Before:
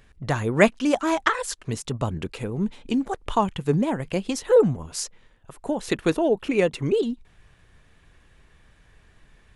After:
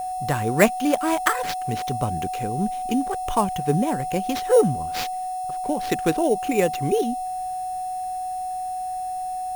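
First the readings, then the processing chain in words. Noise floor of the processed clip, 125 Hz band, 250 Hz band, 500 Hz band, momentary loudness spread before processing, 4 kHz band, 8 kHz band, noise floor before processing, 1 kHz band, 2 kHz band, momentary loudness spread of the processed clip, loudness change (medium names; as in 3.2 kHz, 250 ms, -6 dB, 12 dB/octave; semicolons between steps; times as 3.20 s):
-29 dBFS, 0.0 dB, 0.0 dB, 0.0 dB, 12 LU, +0.5 dB, +2.5 dB, -57 dBFS, +8.0 dB, -0.5 dB, 10 LU, 0.0 dB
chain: whistle 740 Hz -26 dBFS; sample-rate reducer 9.5 kHz, jitter 0%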